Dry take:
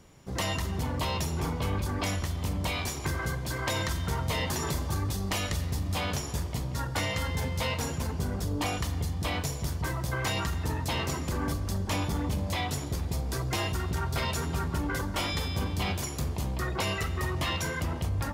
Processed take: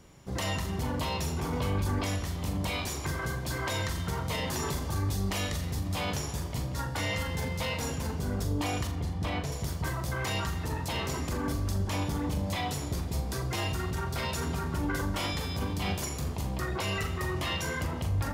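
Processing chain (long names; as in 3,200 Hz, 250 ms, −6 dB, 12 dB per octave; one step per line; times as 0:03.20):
0:08.87–0:09.52: low-pass filter 3,000 Hz 6 dB per octave
brickwall limiter −23.5 dBFS, peak gain reduction 5 dB
flutter between parallel walls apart 7 metres, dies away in 0.27 s
0:01.53–0:01.99: envelope flattener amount 50%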